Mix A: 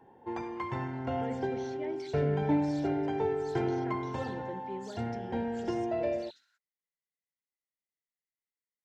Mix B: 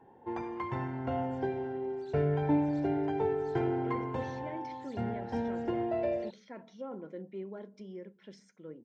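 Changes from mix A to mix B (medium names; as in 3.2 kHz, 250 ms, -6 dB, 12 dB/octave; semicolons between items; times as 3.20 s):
speech: entry +2.65 s; second sound -5.0 dB; master: add treble shelf 4.1 kHz -9.5 dB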